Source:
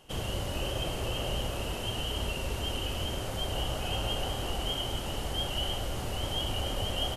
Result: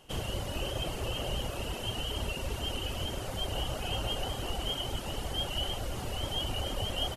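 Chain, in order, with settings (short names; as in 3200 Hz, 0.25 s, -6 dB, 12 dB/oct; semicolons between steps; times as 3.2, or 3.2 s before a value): reverb removal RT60 0.62 s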